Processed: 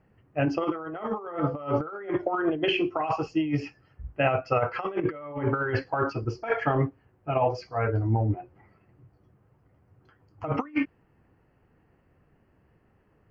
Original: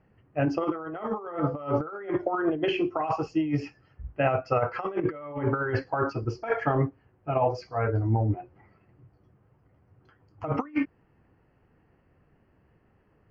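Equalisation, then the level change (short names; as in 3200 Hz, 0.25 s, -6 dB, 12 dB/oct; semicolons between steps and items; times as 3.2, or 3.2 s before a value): dynamic EQ 3000 Hz, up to +6 dB, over -48 dBFS, Q 1.3; 0.0 dB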